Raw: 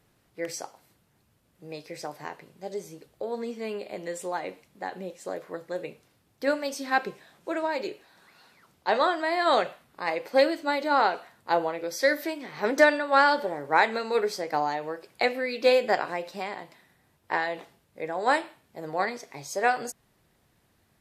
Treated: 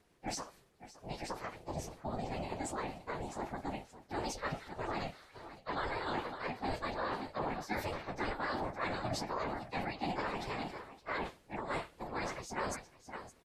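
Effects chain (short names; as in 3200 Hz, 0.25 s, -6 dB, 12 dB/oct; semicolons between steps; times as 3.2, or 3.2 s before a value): whisperiser; on a send: echo 0.885 s -17.5 dB; on the sum: transient shaper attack +3 dB, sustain +7 dB; reverse; compressor 8:1, threshold -29 dBFS, peak gain reduction 19 dB; reverse; ring modulator 260 Hz; LPF 10000 Hz 12 dB/oct; plain phase-vocoder stretch 0.64×; gain +1.5 dB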